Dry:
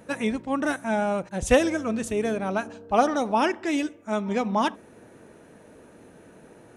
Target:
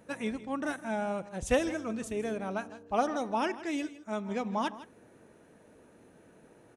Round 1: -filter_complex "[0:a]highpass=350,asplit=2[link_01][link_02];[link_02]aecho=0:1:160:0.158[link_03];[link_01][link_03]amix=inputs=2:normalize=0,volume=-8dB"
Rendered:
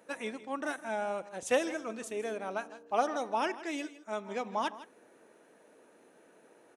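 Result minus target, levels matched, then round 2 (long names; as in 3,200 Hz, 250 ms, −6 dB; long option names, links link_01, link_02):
250 Hz band −4.5 dB
-filter_complex "[0:a]asplit=2[link_01][link_02];[link_02]aecho=0:1:160:0.158[link_03];[link_01][link_03]amix=inputs=2:normalize=0,volume=-8dB"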